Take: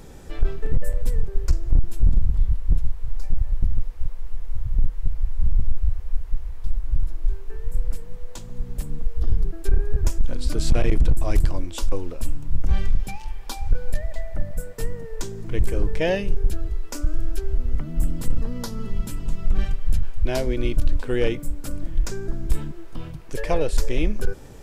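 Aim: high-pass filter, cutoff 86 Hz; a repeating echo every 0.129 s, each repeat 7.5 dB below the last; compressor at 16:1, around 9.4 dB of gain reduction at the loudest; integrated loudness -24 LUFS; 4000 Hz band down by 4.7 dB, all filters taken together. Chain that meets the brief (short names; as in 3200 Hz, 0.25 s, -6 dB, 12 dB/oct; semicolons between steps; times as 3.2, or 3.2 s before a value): HPF 86 Hz; bell 4000 Hz -6.5 dB; compressor 16:1, threshold -30 dBFS; feedback echo 0.129 s, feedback 42%, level -7.5 dB; gain +13.5 dB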